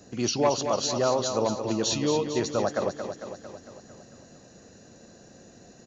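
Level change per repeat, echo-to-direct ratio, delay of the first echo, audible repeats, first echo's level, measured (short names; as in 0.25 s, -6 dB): -4.5 dB, -6.0 dB, 0.225 s, 7, -8.0 dB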